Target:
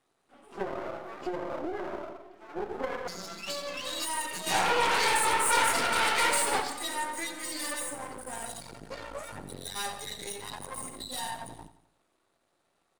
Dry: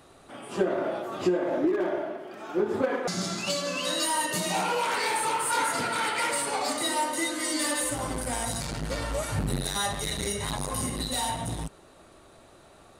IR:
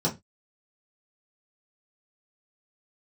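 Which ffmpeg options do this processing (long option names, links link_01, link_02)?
-filter_complex "[0:a]acrossover=split=400[link_01][link_02];[link_01]acompressor=threshold=-48dB:ratio=1.5[link_03];[link_03][link_02]amix=inputs=2:normalize=0,bandreject=frequency=610:width=17,asplit=3[link_04][link_05][link_06];[link_04]afade=type=out:start_time=4.46:duration=0.02[link_07];[link_05]acontrast=88,afade=type=in:start_time=4.46:duration=0.02,afade=type=out:start_time=6.6:duration=0.02[link_08];[link_06]afade=type=in:start_time=6.6:duration=0.02[link_09];[link_07][link_08][link_09]amix=inputs=3:normalize=0,afftdn=noise_reduction=15:noise_floor=-33,aeval=exprs='max(val(0),0)':channel_layout=same,lowshelf=frequency=120:gain=-12,aecho=1:1:87|174|261|348|435:0.211|0.0993|0.0467|0.0219|0.0103"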